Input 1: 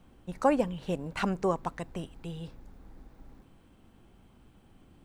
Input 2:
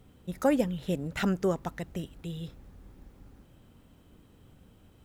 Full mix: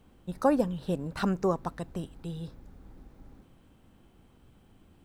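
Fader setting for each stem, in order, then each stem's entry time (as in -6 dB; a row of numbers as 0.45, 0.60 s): -2.0, -7.5 dB; 0.00, 0.00 s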